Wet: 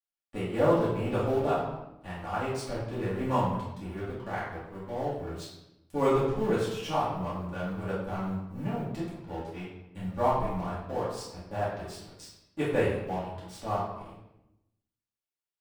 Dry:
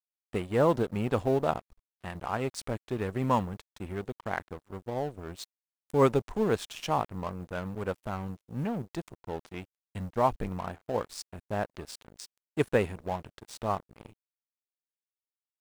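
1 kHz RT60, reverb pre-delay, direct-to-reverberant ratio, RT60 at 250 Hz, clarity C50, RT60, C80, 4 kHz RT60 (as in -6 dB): 0.85 s, 3 ms, -10.5 dB, 1.2 s, 1.0 dB, 0.90 s, 4.5 dB, 0.70 s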